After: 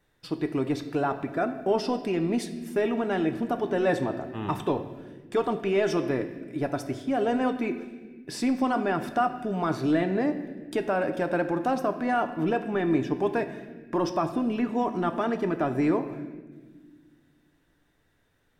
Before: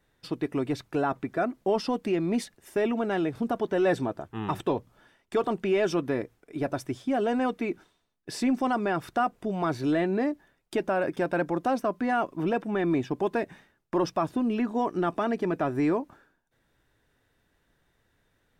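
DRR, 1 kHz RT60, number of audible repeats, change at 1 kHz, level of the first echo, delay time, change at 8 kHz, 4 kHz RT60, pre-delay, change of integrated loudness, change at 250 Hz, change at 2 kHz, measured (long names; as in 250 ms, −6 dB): 7.5 dB, 1.2 s, no echo audible, +1.0 dB, no echo audible, no echo audible, +0.5 dB, 1.2 s, 7 ms, +0.5 dB, +1.0 dB, +0.5 dB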